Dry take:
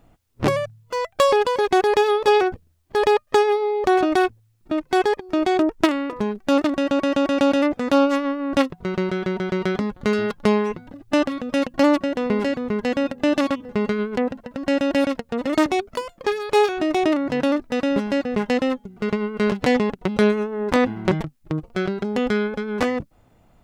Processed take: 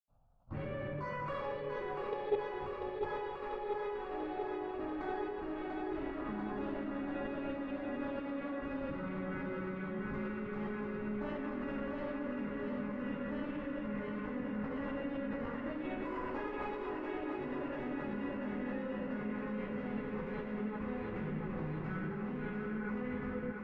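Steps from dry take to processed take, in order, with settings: one diode to ground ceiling -14 dBFS; envelope phaser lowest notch 340 Hz, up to 1600 Hz, full sweep at -14.5 dBFS; compressor 4:1, threshold -29 dBFS, peak gain reduction 11.5 dB; reverb RT60 2.1 s, pre-delay 77 ms; level quantiser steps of 15 dB; LPF 2100 Hz 12 dB/oct; bell 350 Hz -2.5 dB 0.39 oct; notches 60/120/180/240/300/360/420 Hz; thinning echo 0.691 s, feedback 78%, high-pass 230 Hz, level -4.5 dB; gain +6 dB

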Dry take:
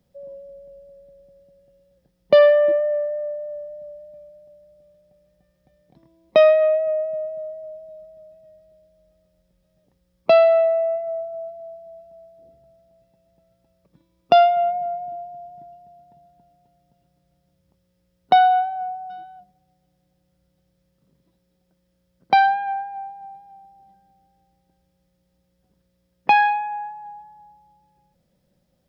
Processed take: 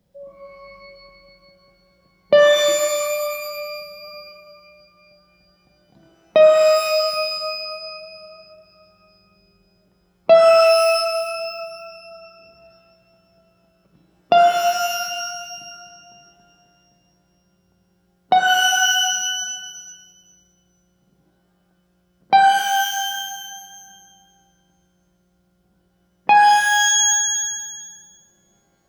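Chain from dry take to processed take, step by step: shimmer reverb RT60 1.3 s, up +12 st, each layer -2 dB, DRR 4 dB

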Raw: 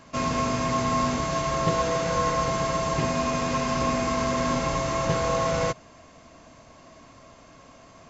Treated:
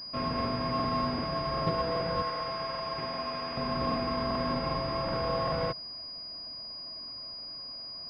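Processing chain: 2.22–3.54 low shelf 440 Hz -12 dB; crackling interface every 0.39 s, samples 2048, repeat, from 0.36; pulse-width modulation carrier 4900 Hz; gain -5.5 dB

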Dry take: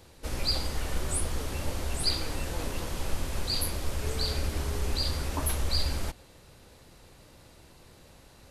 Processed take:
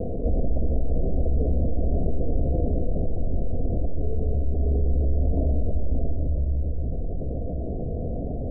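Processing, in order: steep low-pass 710 Hz 96 dB/oct; vocal rider; 2.41–4.6 flange 1.1 Hz, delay 0.7 ms, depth 3.2 ms, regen -81%; shoebox room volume 3500 m³, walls mixed, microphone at 1.7 m; fast leveller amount 70%

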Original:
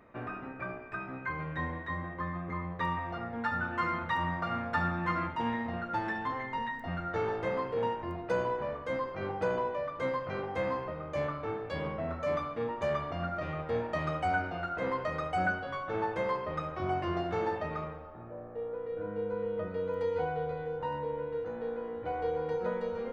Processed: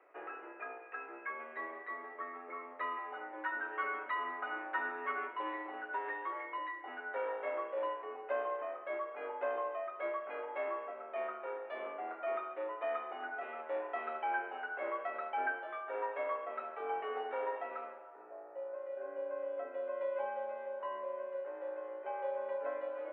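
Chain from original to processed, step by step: mistuned SSB +80 Hz 290–2800 Hz; gain -5 dB

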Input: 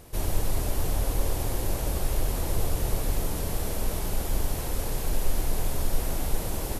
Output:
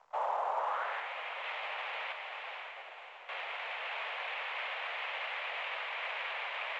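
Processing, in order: 2.12–3.29 spectral contrast raised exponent 1.8; in parallel at -3 dB: limiter -20.5 dBFS, peak gain reduction 8.5 dB; on the sum: crossover distortion -40 dBFS; mistuned SSB +250 Hz 240–3200 Hz; soft clip -28 dBFS, distortion -18 dB; 1–1.44 air absorption 420 m; on a send: diffused feedback echo 0.557 s, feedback 43%, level -3.5 dB; on the sum: band-pass sweep 910 Hz -> 2300 Hz, 0.56–1.11; gain +6.5 dB; µ-law 128 kbps 16000 Hz

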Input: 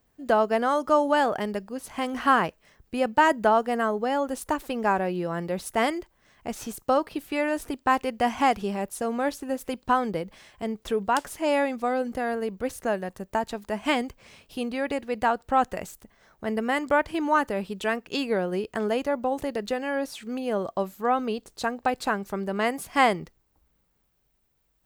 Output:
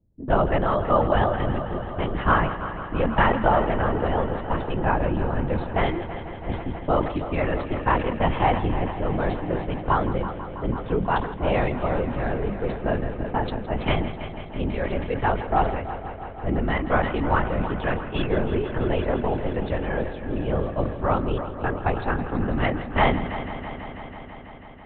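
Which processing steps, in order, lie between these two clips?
bell 140 Hz +10 dB 1.4 oct; LPC vocoder at 8 kHz whisper; low-pass opened by the level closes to 310 Hz, open at -21 dBFS; multi-head echo 0.164 s, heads first and second, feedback 74%, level -15.5 dB; sustainer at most 83 dB/s

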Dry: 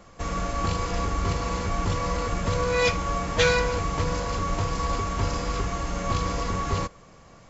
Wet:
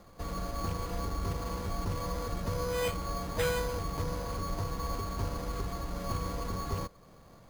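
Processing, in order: high shelf 2100 Hz -9 dB; in parallel at -2.5 dB: compressor, threshold -39 dBFS, peak gain reduction 19.5 dB; on the sum: sample-and-hold 8×; gain -8.5 dB

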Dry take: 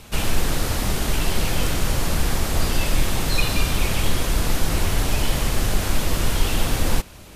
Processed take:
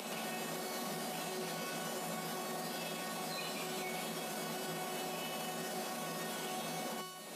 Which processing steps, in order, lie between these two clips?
resonator 370 Hz, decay 0.56 s, mix 90%; thin delay 0.11 s, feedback 52%, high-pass 4100 Hz, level -10 dB; upward compressor, threshold -29 dBFS; rippled Chebyshev high-pass 160 Hz, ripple 9 dB; limiter -43 dBFS, peak gain reduction 9 dB; gain +11.5 dB

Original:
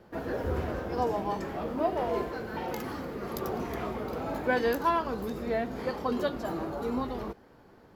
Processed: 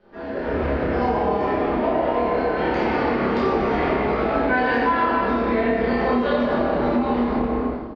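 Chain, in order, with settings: LPF 4600 Hz 24 dB/oct; doubler 29 ms -2 dB; reverb RT60 2.6 s, pre-delay 5 ms, DRR -11 dB; compressor, threshold -20 dBFS, peak gain reduction 11 dB; bell 110 Hz -7 dB 1.3 oct; AGC gain up to 11.5 dB; dynamic EQ 2200 Hz, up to +5 dB, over -37 dBFS, Q 2.1; gain -6.5 dB

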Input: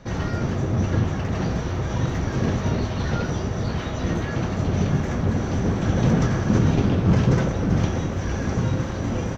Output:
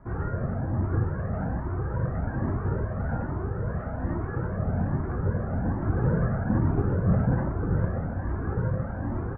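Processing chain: Chebyshev low-pass 1600 Hz, order 4; cascading flanger rising 1.2 Hz

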